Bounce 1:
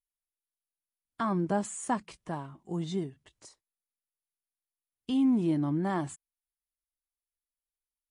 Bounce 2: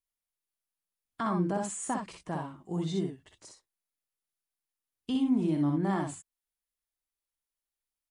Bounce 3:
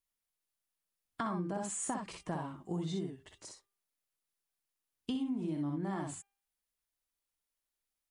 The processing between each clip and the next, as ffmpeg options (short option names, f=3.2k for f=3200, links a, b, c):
-filter_complex "[0:a]alimiter=limit=-23.5dB:level=0:latency=1:release=93,asplit=2[a][b];[b]aecho=0:1:51|62:0.316|0.596[c];[a][c]amix=inputs=2:normalize=0"
-af "acompressor=threshold=-35dB:ratio=6,bandreject=f=398.7:t=h:w=4,bandreject=f=797.4:t=h:w=4,bandreject=f=1.1961k:t=h:w=4,bandreject=f=1.5948k:t=h:w=4,bandreject=f=1.9935k:t=h:w=4,bandreject=f=2.3922k:t=h:w=4,bandreject=f=2.7909k:t=h:w=4,bandreject=f=3.1896k:t=h:w=4,bandreject=f=3.5883k:t=h:w=4,volume=1.5dB"